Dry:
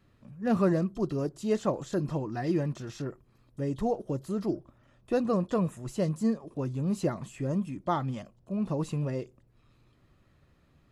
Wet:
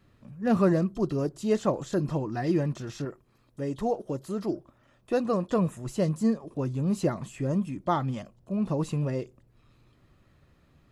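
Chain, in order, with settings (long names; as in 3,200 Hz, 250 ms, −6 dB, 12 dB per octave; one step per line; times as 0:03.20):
0:03.05–0:05.50: low-shelf EQ 200 Hz −7.5 dB
level +2.5 dB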